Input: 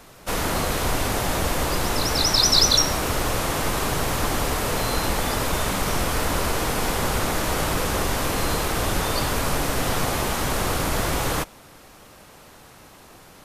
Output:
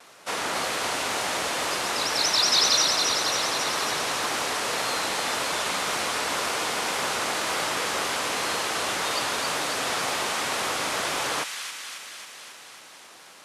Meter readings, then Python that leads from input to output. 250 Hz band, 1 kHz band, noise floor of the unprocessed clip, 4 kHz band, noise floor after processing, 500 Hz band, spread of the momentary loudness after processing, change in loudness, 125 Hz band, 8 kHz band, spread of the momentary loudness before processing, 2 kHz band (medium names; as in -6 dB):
-10.0 dB, -1.5 dB, -48 dBFS, 0.0 dB, -48 dBFS, -4.5 dB, 12 LU, -2.0 dB, -18.5 dB, -1.0 dB, 6 LU, +1.0 dB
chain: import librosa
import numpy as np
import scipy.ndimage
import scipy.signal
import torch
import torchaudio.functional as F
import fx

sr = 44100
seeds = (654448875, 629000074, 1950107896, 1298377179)

p1 = fx.cvsd(x, sr, bps=64000)
p2 = fx.vibrato(p1, sr, rate_hz=1.9, depth_cents=54.0)
p3 = fx.weighting(p2, sr, curve='A')
p4 = p3 + fx.echo_wet_highpass(p3, sr, ms=272, feedback_pct=68, hz=2000.0, wet_db=-4, dry=0)
y = F.gain(torch.from_numpy(p4), -1.5).numpy()